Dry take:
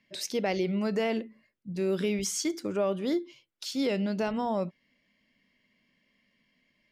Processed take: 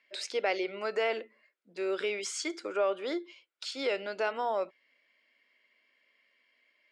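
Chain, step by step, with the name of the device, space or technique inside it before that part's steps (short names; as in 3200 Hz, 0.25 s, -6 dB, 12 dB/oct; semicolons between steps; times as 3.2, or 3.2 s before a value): phone speaker on a table (speaker cabinet 390–8000 Hz, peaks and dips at 1400 Hz +7 dB, 2300 Hz +4 dB, 6000 Hz -8 dB)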